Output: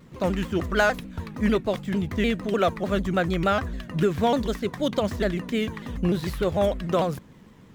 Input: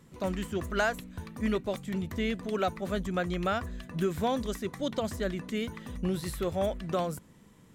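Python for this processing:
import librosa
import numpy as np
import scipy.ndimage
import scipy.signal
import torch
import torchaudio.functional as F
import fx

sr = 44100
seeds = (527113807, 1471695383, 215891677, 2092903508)

y = scipy.ndimage.median_filter(x, 5, mode='constant')
y = fx.vibrato_shape(y, sr, shape='saw_down', rate_hz=6.7, depth_cents=160.0)
y = F.gain(torch.from_numpy(y), 7.0).numpy()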